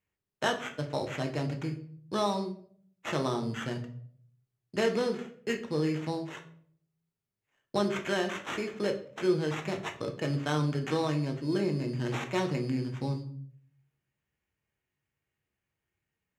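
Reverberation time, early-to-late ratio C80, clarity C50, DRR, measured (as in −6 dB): 0.60 s, 15.0 dB, 11.5 dB, 3.0 dB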